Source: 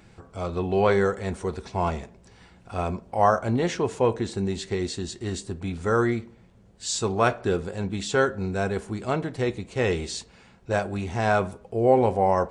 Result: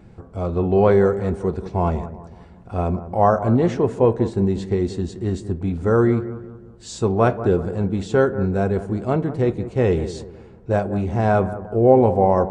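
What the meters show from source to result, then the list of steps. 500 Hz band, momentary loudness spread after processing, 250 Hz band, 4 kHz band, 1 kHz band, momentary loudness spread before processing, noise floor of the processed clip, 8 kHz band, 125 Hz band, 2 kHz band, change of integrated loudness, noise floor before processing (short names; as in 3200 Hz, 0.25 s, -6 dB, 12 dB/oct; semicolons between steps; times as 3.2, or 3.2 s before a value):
+6.0 dB, 14 LU, +7.5 dB, -6.5 dB, +2.5 dB, 11 LU, -44 dBFS, -7.5 dB, +8.0 dB, -2.0 dB, +5.5 dB, -54 dBFS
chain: tilt shelf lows +8 dB, about 1200 Hz; on a send: analogue delay 0.185 s, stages 2048, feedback 41%, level -13.5 dB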